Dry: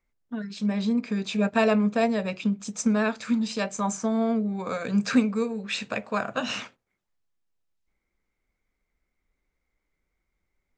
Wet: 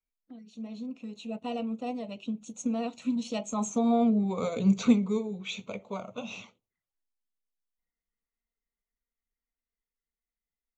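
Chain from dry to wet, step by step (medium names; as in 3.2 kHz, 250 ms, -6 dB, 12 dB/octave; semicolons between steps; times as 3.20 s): coarse spectral quantiser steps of 15 dB; Doppler pass-by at 4.27 s, 25 m/s, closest 16 m; touch-sensitive flanger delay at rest 4.5 ms, full sweep at -52.5 dBFS; trim +2.5 dB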